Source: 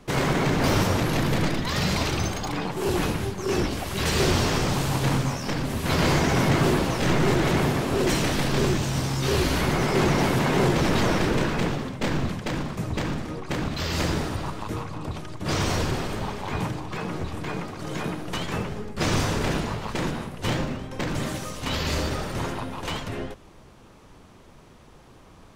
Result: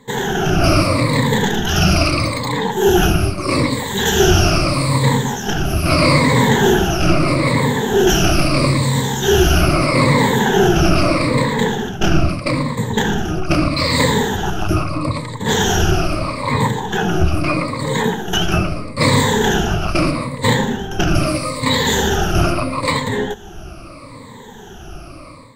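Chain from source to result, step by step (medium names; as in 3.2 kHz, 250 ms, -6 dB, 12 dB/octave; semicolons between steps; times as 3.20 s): drifting ripple filter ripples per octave 1, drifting -0.78 Hz, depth 22 dB; level rider; trim -1 dB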